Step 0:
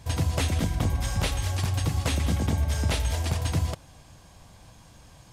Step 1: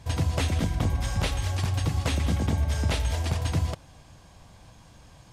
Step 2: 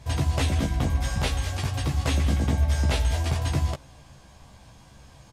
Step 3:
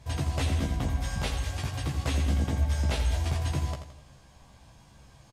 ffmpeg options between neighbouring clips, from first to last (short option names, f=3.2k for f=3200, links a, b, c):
-af "highshelf=f=8.6k:g=-7.5"
-filter_complex "[0:a]asplit=2[a][b];[b]adelay=15,volume=-4dB[c];[a][c]amix=inputs=2:normalize=0"
-af "aecho=1:1:84|168|252|336|420:0.355|0.145|0.0596|0.0245|0.01,volume=-5dB"